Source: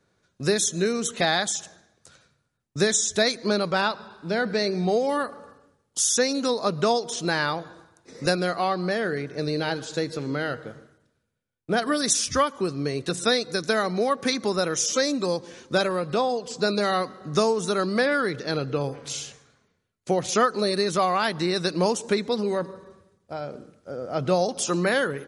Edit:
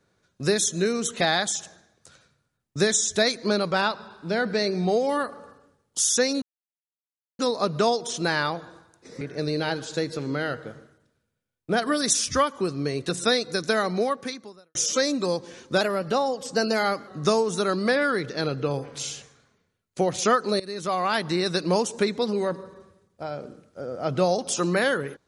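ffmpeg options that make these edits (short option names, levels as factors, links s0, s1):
-filter_complex "[0:a]asplit=7[s0][s1][s2][s3][s4][s5][s6];[s0]atrim=end=6.42,asetpts=PTS-STARTPTS,afade=t=out:st=6.416:d=0.004:c=hsin,apad=pad_dur=0.97[s7];[s1]atrim=start=6.42:end=8.242,asetpts=PTS-STARTPTS,afade=t=in:d=0.004:c=hsin[s8];[s2]atrim=start=9.208:end=14.75,asetpts=PTS-STARTPTS,afade=t=out:st=4.802:d=0.74:c=qua[s9];[s3]atrim=start=14.75:end=15.814,asetpts=PTS-STARTPTS,afade=t=in:d=0.004:c=hsin[s10];[s4]atrim=start=15.81:end=17.18,asetpts=PTS-STARTPTS,asetrate=47628,aresample=44100[s11];[s5]atrim=start=17.176:end=20.7,asetpts=PTS-STARTPTS,afade=t=out:st=3.52:d=0.004:c=hsin:silence=0.125893[s12];[s6]atrim=start=20.7,asetpts=PTS-STARTPTS,afade=t=in:d=0.55:silence=0.125893[s13];[s7][s8]concat=n=2:v=0:a=1[s14];[s9][s10]concat=n=2:v=0:a=1[s15];[s14][s15]acrossfade=d=0.004:c1=hsin:c2=hsin[s16];[s16][s11]acrossfade=d=0.004:c1=hsin:c2=hsin[s17];[s12][s13]concat=n=2:v=0:a=1[s18];[s17][s18]acrossfade=d=0.004:c1=hsin:c2=hsin"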